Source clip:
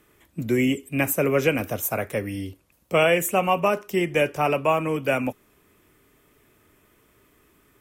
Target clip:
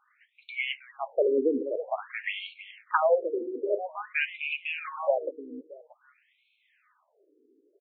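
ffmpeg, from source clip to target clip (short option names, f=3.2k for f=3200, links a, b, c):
-filter_complex "[0:a]asplit=3[a][b][c];[a]afade=t=out:st=2.23:d=0.02[d];[b]aeval=exprs='0.398*sin(PI/2*2.24*val(0)/0.398)':c=same,afade=t=in:st=2.23:d=0.02,afade=t=out:st=2.96:d=0.02[e];[c]afade=t=in:st=2.96:d=0.02[f];[d][e][f]amix=inputs=3:normalize=0,asplit=2[g][h];[h]aecho=0:1:315|630|945:0.251|0.0854|0.029[i];[g][i]amix=inputs=2:normalize=0,afftfilt=real='re*between(b*sr/1024,340*pow(3100/340,0.5+0.5*sin(2*PI*0.5*pts/sr))/1.41,340*pow(3100/340,0.5+0.5*sin(2*PI*0.5*pts/sr))*1.41)':imag='im*between(b*sr/1024,340*pow(3100/340,0.5+0.5*sin(2*PI*0.5*pts/sr))/1.41,340*pow(3100/340,0.5+0.5*sin(2*PI*0.5*pts/sr))*1.41)':win_size=1024:overlap=0.75"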